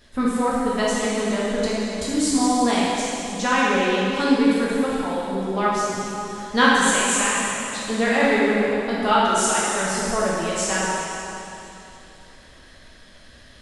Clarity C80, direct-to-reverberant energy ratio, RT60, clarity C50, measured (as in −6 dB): −1.5 dB, −7.5 dB, 3.0 s, −3.5 dB